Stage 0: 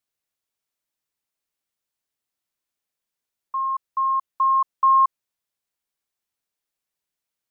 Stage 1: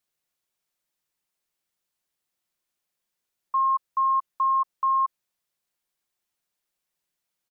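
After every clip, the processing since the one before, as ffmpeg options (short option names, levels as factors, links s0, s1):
-af "aecho=1:1:5.6:0.3,alimiter=limit=0.0944:level=0:latency=1:release=28,volume=1.26"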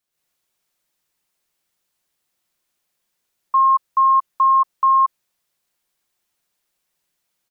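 -af "dynaudnorm=f=100:g=3:m=2.51"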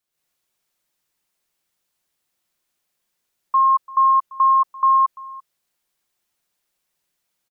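-af "aecho=1:1:341:0.0944,volume=0.891"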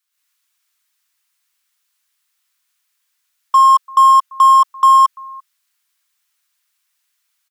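-filter_complex "[0:a]highpass=f=1100:w=0.5412,highpass=f=1100:w=1.3066,asplit=2[s0][s1];[s1]acrusher=bits=3:mix=0:aa=0.5,volume=0.531[s2];[s0][s2]amix=inputs=2:normalize=0,volume=2.11"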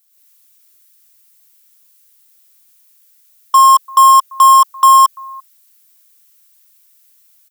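-af "aemphasis=mode=production:type=75kf,volume=1.12"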